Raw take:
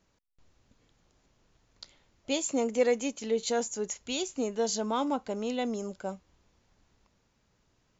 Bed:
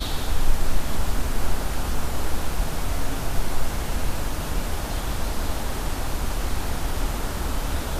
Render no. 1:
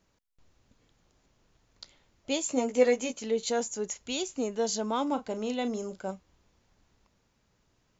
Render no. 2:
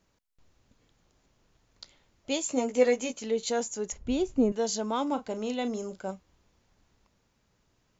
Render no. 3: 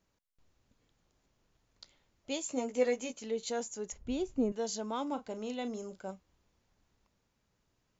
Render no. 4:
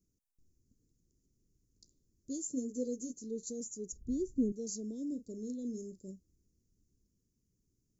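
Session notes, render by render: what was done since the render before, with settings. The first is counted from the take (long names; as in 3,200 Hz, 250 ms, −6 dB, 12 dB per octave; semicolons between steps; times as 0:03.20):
0:02.48–0:03.23: double-tracking delay 16 ms −4.5 dB; 0:05.08–0:06.11: double-tracking delay 37 ms −11 dB
0:03.92–0:04.52: spectral tilt −4.5 dB per octave
level −6.5 dB
inverse Chebyshev band-stop filter 780–2,900 Hz, stop band 50 dB; dynamic equaliser 740 Hz, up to +3 dB, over −50 dBFS, Q 0.74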